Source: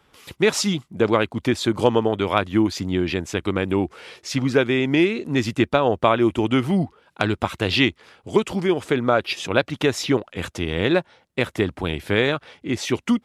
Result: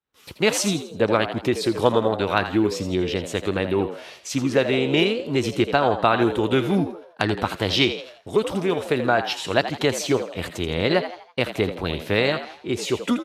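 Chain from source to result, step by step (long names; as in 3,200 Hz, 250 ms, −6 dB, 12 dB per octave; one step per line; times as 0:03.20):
downward expander −44 dBFS
echo with shifted repeats 82 ms, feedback 41%, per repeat +81 Hz, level −11 dB
formants moved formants +2 semitones
level −1 dB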